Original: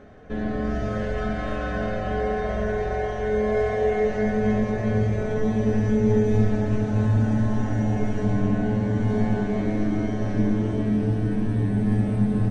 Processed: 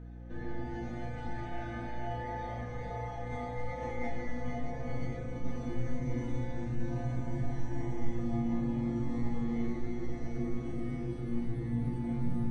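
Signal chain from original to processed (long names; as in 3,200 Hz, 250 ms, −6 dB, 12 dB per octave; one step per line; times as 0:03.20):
phase-vocoder pitch shift with formants kept +2.5 semitones
resonators tuned to a chord A#2 minor, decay 0.52 s
mains hum 60 Hz, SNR 14 dB
level +5.5 dB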